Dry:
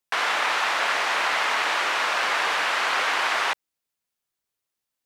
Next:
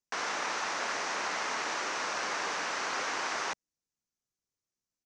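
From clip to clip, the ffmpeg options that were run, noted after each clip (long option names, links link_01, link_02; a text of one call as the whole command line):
ffmpeg -i in.wav -af "firequalizer=gain_entry='entry(200,0);entry(650,-9);entry(3300,-14);entry(6000,0);entry(12000,-28)':delay=0.05:min_phase=1" out.wav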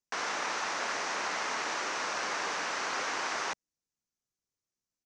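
ffmpeg -i in.wav -af anull out.wav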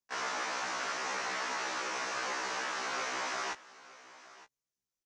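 ffmpeg -i in.wav -af "aecho=1:1:917:0.119,afftfilt=real='re*1.73*eq(mod(b,3),0)':imag='im*1.73*eq(mod(b,3),0)':win_size=2048:overlap=0.75" out.wav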